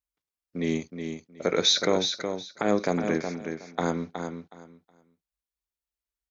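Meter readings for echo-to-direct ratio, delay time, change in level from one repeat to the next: -7.0 dB, 0.368 s, -14.0 dB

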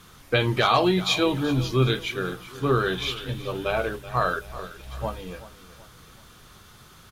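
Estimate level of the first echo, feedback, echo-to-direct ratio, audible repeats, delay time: -16.0 dB, 43%, -15.0 dB, 3, 0.379 s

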